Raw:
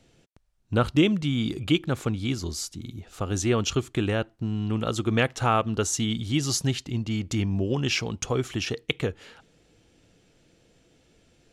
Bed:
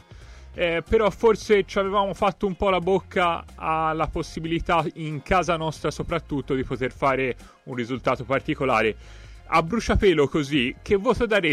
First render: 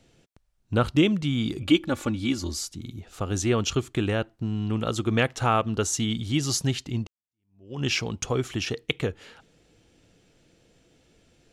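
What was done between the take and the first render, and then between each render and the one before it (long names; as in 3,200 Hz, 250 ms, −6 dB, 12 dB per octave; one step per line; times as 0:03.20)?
0:01.62–0:02.59: comb filter 3.5 ms
0:07.07–0:07.82: fade in exponential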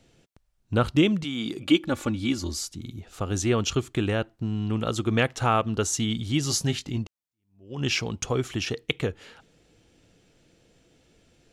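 0:01.23–0:01.83: high-pass filter 340 Hz → 130 Hz
0:06.44–0:06.98: double-tracking delay 20 ms −8 dB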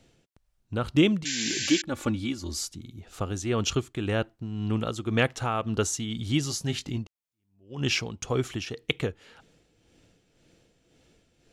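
amplitude tremolo 1.9 Hz, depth 54%
0:01.25–0:01.82: sound drawn into the spectrogram noise 1,500–7,600 Hz −31 dBFS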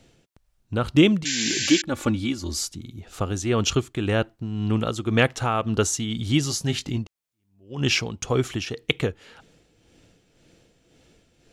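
level +4.5 dB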